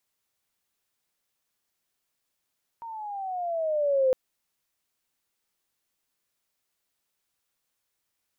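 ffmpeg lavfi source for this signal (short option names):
-f lavfi -i "aevalsrc='pow(10,(-18+18*(t/1.31-1))/20)*sin(2*PI*934*1.31/(-10.5*log(2)/12)*(exp(-10.5*log(2)/12*t/1.31)-1))':d=1.31:s=44100"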